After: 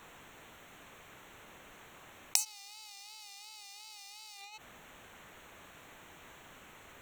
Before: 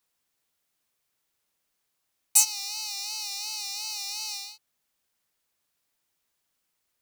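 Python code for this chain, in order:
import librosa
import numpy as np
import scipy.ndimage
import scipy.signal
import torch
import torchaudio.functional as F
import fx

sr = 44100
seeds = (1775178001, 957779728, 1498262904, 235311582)

p1 = fx.wiener(x, sr, points=9)
p2 = fx.over_compress(p1, sr, threshold_db=-50.0, ratio=-1.0)
p3 = p1 + (p2 * 10.0 ** (2.0 / 20.0))
p4 = fx.gate_flip(p3, sr, shuts_db=-27.0, range_db=-31)
y = p4 * 10.0 ** (15.5 / 20.0)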